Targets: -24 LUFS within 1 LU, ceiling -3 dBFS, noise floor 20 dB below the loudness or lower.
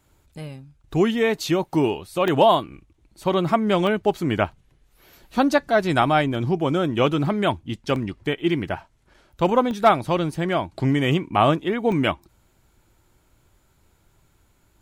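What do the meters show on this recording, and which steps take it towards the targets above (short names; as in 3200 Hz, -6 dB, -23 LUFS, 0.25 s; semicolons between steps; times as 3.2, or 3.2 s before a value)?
dropouts 6; longest dropout 1.2 ms; loudness -22.0 LUFS; peak -5.5 dBFS; loudness target -24.0 LUFS
-> interpolate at 2.28/3.87/6.02/7.96/9.71/11.92, 1.2 ms; gain -2 dB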